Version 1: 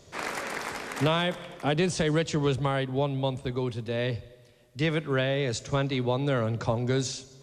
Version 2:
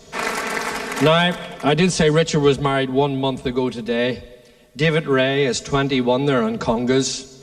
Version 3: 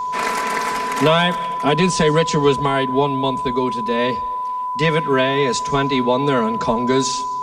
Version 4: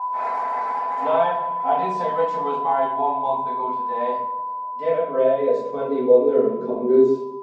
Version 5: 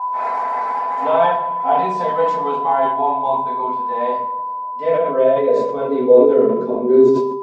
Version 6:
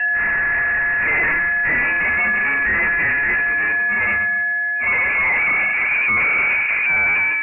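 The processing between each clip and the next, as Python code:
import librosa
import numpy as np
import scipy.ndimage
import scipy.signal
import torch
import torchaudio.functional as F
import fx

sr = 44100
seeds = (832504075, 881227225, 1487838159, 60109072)

y1 = x + 0.98 * np.pad(x, (int(4.5 * sr / 1000.0), 0))[:len(x)]
y1 = y1 * 10.0 ** (7.0 / 20.0)
y2 = fx.peak_eq(y1, sr, hz=90.0, db=-5.5, octaves=0.75)
y2 = y2 + 10.0 ** (-21.0 / 20.0) * np.sin(2.0 * np.pi * 1000.0 * np.arange(len(y2)) / sr)
y3 = fx.filter_sweep_bandpass(y2, sr, from_hz=810.0, to_hz=380.0, start_s=4.07, end_s=6.66, q=6.7)
y3 = fx.room_shoebox(y3, sr, seeds[0], volume_m3=140.0, walls='mixed', distance_m=2.0)
y4 = fx.sustainer(y3, sr, db_per_s=48.0)
y4 = y4 * 10.0 ** (3.5 / 20.0)
y5 = fx.tube_stage(y4, sr, drive_db=24.0, bias=0.3)
y5 = fx.freq_invert(y5, sr, carrier_hz=2700)
y5 = y5 * 10.0 ** (8.0 / 20.0)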